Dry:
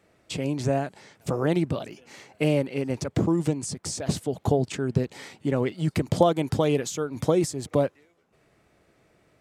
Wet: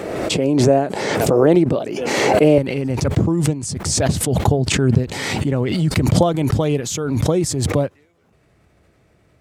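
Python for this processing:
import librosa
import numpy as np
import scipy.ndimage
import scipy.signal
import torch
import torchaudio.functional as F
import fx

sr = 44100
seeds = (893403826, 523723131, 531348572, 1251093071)

y = fx.peak_eq(x, sr, hz=fx.steps((0.0, 450.0), (2.58, 70.0)), db=10.5, octaves=2.1)
y = fx.pre_swell(y, sr, db_per_s=29.0)
y = y * 10.0 ** (2.0 / 20.0)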